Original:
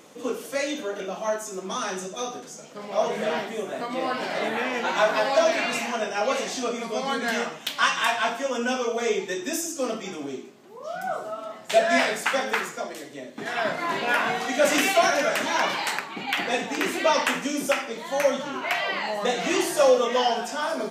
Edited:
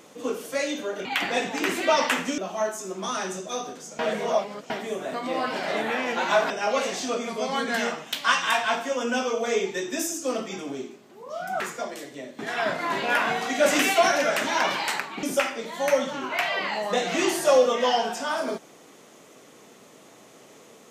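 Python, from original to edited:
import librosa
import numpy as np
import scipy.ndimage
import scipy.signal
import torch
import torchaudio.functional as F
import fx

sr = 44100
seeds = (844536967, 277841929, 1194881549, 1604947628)

y = fx.edit(x, sr, fx.reverse_span(start_s=2.66, length_s=0.71),
    fx.cut(start_s=5.17, length_s=0.87),
    fx.cut(start_s=11.14, length_s=1.45),
    fx.move(start_s=16.22, length_s=1.33, to_s=1.05), tone=tone)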